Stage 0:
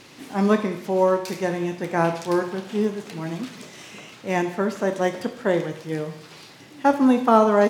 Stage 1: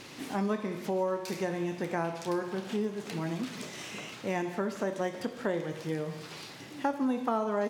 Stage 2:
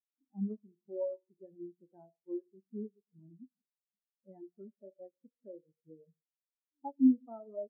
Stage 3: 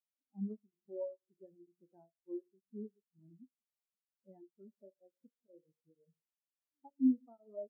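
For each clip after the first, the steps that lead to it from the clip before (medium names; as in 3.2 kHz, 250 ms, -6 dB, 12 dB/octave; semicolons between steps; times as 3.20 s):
compression 3:1, threshold -31 dBFS, peak gain reduction 15.5 dB
spectral contrast expander 4:1
tremolo of two beating tones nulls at 2.1 Hz; trim -3.5 dB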